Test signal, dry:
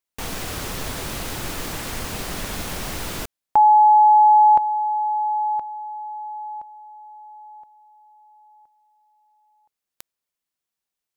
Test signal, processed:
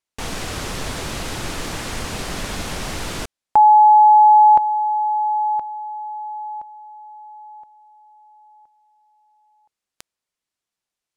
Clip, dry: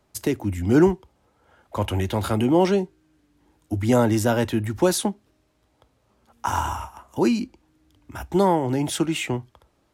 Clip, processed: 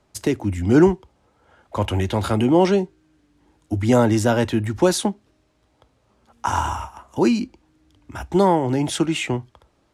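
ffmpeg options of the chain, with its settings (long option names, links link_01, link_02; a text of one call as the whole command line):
ffmpeg -i in.wav -af "lowpass=9300,volume=2.5dB" out.wav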